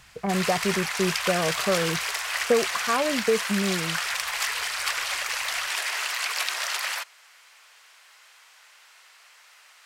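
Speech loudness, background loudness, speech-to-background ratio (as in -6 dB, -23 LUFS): -27.0 LUFS, -27.0 LUFS, 0.0 dB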